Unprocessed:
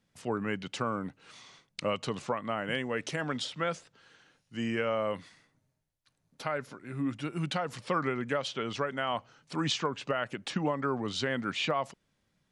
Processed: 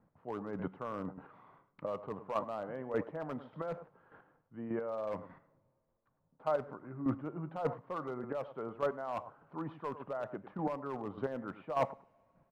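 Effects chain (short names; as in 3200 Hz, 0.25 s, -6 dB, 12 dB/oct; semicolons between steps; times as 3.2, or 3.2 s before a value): dynamic EQ 600 Hz, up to +6 dB, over -44 dBFS, Q 0.94; reverse; compressor 8:1, threshold -35 dBFS, peak gain reduction 14.5 dB; reverse; ladder low-pass 1300 Hz, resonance 35%; on a send: echo 0.102 s -13.5 dB; on the sum: hard clip -37 dBFS, distortion -19 dB; chopper 1.7 Hz, depth 60%, duty 15%; two-slope reverb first 0.38 s, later 2.8 s, from -21 dB, DRR 18 dB; gain +13.5 dB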